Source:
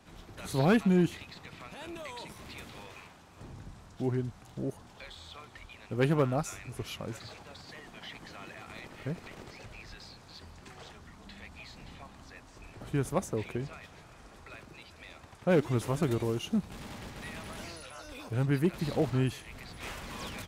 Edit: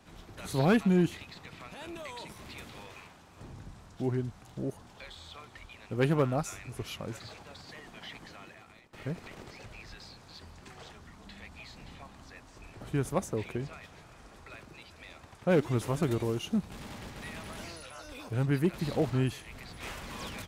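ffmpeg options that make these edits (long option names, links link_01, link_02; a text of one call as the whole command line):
ffmpeg -i in.wav -filter_complex "[0:a]asplit=2[link_01][link_02];[link_01]atrim=end=8.93,asetpts=PTS-STARTPTS,afade=type=out:start_time=8.16:duration=0.77:silence=0.0944061[link_03];[link_02]atrim=start=8.93,asetpts=PTS-STARTPTS,afade=type=in:duration=0.004:curve=hsin:silence=0.0944061[link_04];[link_03][link_04]concat=n=2:v=0:a=1" out.wav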